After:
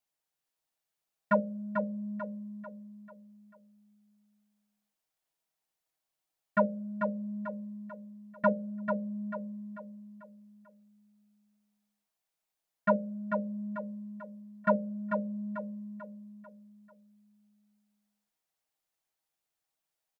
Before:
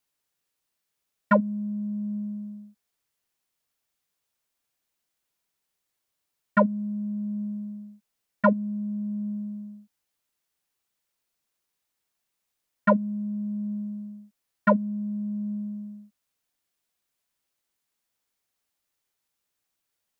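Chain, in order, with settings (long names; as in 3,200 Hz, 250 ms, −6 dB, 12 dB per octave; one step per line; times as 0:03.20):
parametric band 720 Hz +7 dB 0.62 octaves
mains-hum notches 60/120/180/240/300/360/420/480/540/600 Hz
comb filter 6.3 ms, depth 32%
repeating echo 442 ms, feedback 43%, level −6 dB
level −8 dB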